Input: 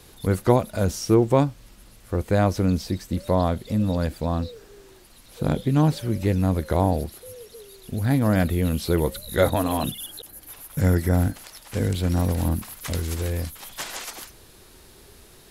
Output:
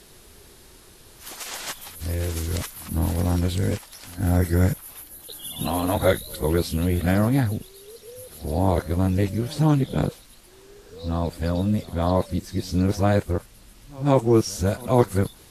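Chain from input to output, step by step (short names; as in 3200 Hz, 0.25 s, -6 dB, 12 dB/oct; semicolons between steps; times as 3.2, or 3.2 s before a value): whole clip reversed; pre-echo 0.152 s -23 dB; Vorbis 32 kbps 44100 Hz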